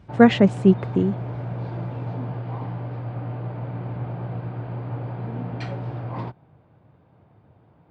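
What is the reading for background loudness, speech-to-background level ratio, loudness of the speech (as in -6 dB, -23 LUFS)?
-31.5 LUFS, 13.0 dB, -18.5 LUFS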